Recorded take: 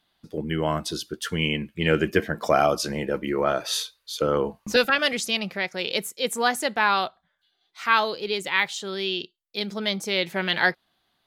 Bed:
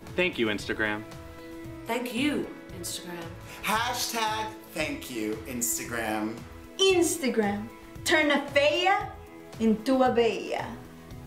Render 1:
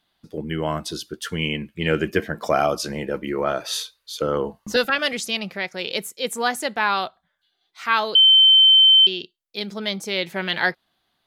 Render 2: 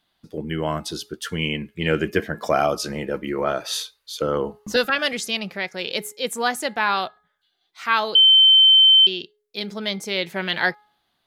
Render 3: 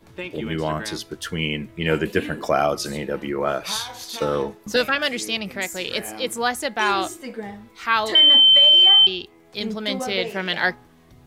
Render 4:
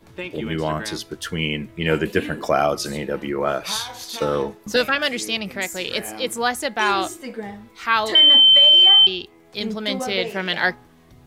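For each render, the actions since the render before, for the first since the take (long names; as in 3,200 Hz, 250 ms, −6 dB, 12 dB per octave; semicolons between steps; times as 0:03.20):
0:04.22–0:04.85: Butterworth band-reject 2,400 Hz, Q 6.7; 0:08.15–0:09.07: beep over 3,090 Hz −9 dBFS
hum removal 419.5 Hz, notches 5
mix in bed −7 dB
level +1 dB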